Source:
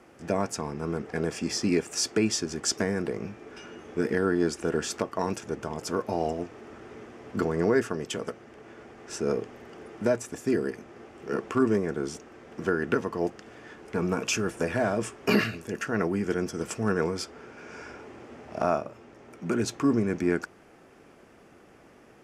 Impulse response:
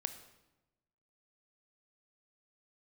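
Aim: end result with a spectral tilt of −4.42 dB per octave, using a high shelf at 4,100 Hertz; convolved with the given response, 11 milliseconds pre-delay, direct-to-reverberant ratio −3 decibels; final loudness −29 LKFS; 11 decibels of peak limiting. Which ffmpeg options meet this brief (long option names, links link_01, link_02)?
-filter_complex "[0:a]highshelf=frequency=4100:gain=4,alimiter=limit=-20.5dB:level=0:latency=1,asplit=2[link_01][link_02];[1:a]atrim=start_sample=2205,adelay=11[link_03];[link_02][link_03]afir=irnorm=-1:irlink=0,volume=3.5dB[link_04];[link_01][link_04]amix=inputs=2:normalize=0,volume=-1.5dB"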